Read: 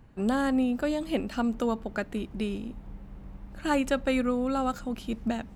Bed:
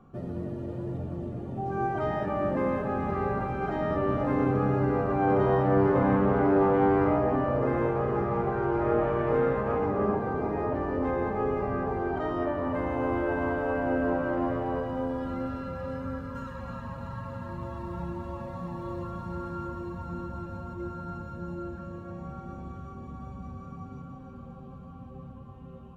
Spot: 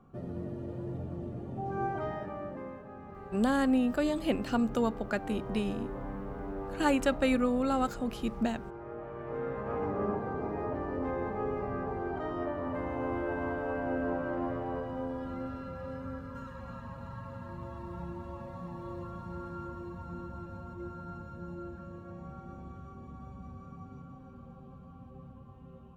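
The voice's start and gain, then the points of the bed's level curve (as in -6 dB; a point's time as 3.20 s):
3.15 s, -1.0 dB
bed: 1.89 s -4 dB
2.83 s -17.5 dB
8.96 s -17.5 dB
9.83 s -5.5 dB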